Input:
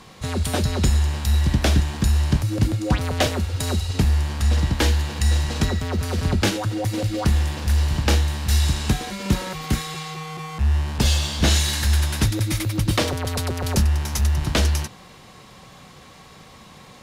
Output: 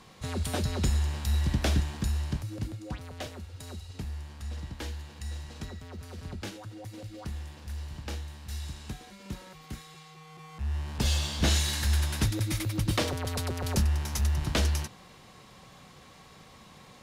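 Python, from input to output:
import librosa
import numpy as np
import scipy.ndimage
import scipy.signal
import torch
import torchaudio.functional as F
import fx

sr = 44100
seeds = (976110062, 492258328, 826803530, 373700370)

y = fx.gain(x, sr, db=fx.line((1.79, -8.0), (3.07, -18.5), (10.13, -18.5), (11.18, -7.0)))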